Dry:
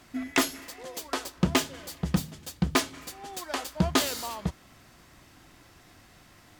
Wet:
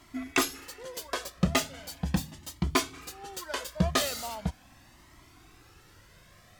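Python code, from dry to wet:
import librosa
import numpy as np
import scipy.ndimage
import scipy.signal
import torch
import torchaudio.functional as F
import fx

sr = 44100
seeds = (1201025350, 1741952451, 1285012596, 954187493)

y = fx.comb_cascade(x, sr, direction='rising', hz=0.39)
y = y * librosa.db_to_amplitude(3.0)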